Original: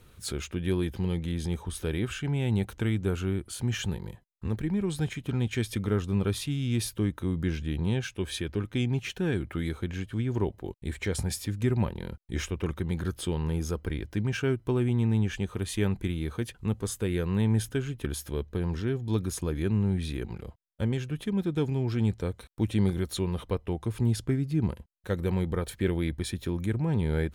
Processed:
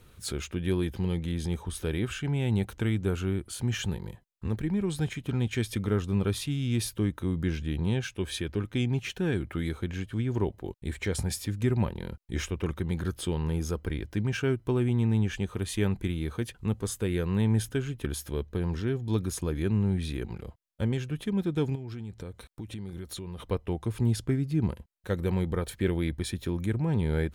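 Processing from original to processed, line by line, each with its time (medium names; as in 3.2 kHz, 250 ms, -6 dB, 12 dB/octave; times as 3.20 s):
21.75–23.40 s: compression, threshold -35 dBFS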